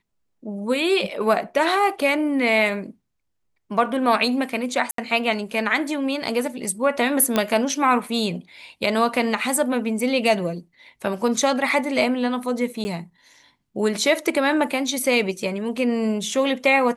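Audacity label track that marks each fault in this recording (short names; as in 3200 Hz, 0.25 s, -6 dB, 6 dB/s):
4.910000	4.980000	gap 73 ms
7.360000	7.360000	pop -6 dBFS
12.840000	12.850000	gap 10 ms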